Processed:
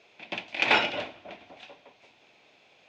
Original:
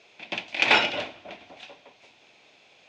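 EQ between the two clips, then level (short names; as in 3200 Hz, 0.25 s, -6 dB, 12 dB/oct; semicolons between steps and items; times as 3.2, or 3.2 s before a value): high shelf 4000 Hz -6.5 dB; -1.5 dB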